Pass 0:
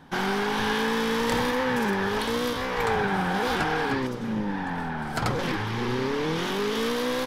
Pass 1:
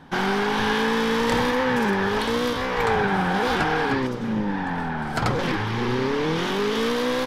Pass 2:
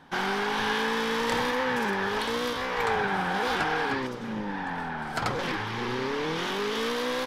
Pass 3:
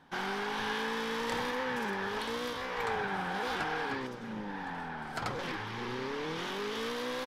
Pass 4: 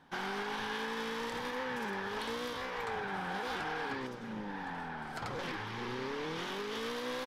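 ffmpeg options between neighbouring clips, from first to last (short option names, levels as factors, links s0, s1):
-af "highshelf=f=8400:g=-8,volume=1.5"
-af "lowshelf=f=360:g=-8,volume=0.708"
-af "aecho=1:1:1142:0.112,volume=0.447"
-af "alimiter=level_in=1.33:limit=0.0631:level=0:latency=1:release=75,volume=0.75,volume=0.841"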